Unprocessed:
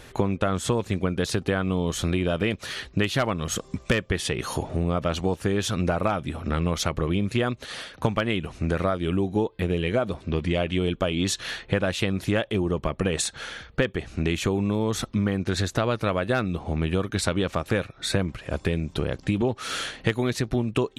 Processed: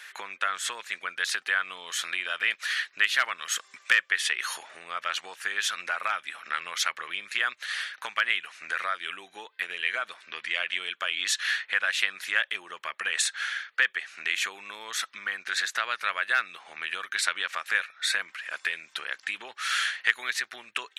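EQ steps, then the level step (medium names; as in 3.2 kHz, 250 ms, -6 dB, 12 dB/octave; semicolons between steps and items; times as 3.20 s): resonant high-pass 1.7 kHz, resonance Q 2.6; 0.0 dB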